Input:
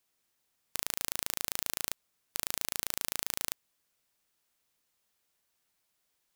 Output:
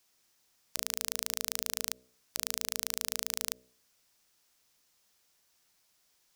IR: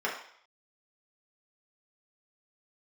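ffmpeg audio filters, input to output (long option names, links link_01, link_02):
-af "equalizer=frequency=5500:width_type=o:width=0.78:gain=5.5,bandreject=frequency=62.86:width_type=h:width=4,bandreject=frequency=125.72:width_type=h:width=4,bandreject=frequency=188.58:width_type=h:width=4,bandreject=frequency=251.44:width_type=h:width=4,bandreject=frequency=314.3:width_type=h:width=4,bandreject=frequency=377.16:width_type=h:width=4,bandreject=frequency=440.02:width_type=h:width=4,bandreject=frequency=502.88:width_type=h:width=4,bandreject=frequency=565.74:width_type=h:width=4,bandreject=frequency=628.6:width_type=h:width=4,alimiter=limit=-10dB:level=0:latency=1:release=45,volume=5.5dB"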